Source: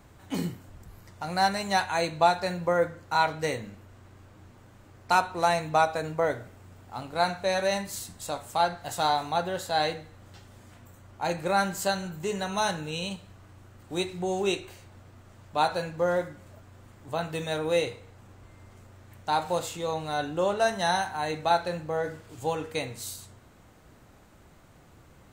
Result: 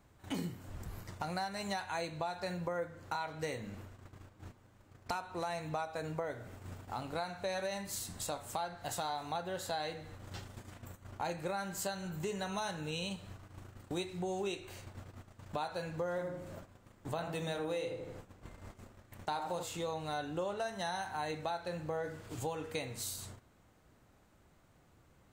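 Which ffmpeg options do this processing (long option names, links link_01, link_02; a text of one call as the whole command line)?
ffmpeg -i in.wav -filter_complex "[0:a]asettb=1/sr,asplit=3[link_01][link_02][link_03];[link_01]atrim=end=16.104[link_04];[link_02]atrim=start=16.1:end=19.63,asetpts=PTS-STARTPTS,afade=type=in:duration=0.004:curve=qsin,afade=type=out:start_time=3.526:duration=0.004:curve=qsin,asplit=2[link_05][link_06];[link_06]adelay=80,lowpass=frequency=1000:poles=1,volume=-4.5dB,asplit=2[link_07][link_08];[link_08]adelay=80,lowpass=frequency=1000:poles=1,volume=0.49,asplit=2[link_09][link_10];[link_10]adelay=80,lowpass=frequency=1000:poles=1,volume=0.49,asplit=2[link_11][link_12];[link_12]adelay=80,lowpass=frequency=1000:poles=1,volume=0.49,asplit=2[link_13][link_14];[link_14]adelay=80,lowpass=frequency=1000:poles=1,volume=0.49,asplit=2[link_15][link_16];[link_16]adelay=80,lowpass=frequency=1000:poles=1,volume=0.49[link_17];[link_05][link_07][link_09][link_11][link_13][link_15][link_17]amix=inputs=7:normalize=0,atrim=end_sample=155673[link_18];[link_03]atrim=start=19.626[link_19];[link_04][link_18]acrossfade=duration=0.004:curve1=hsin:curve2=qsin[link_20];[link_20][link_19]acrossfade=duration=0.004:curve1=qsin:curve2=hsin,agate=range=-17dB:threshold=-49dB:ratio=16:detection=peak,alimiter=limit=-18dB:level=0:latency=1:release=289,acompressor=threshold=-47dB:ratio=3,volume=6.5dB" out.wav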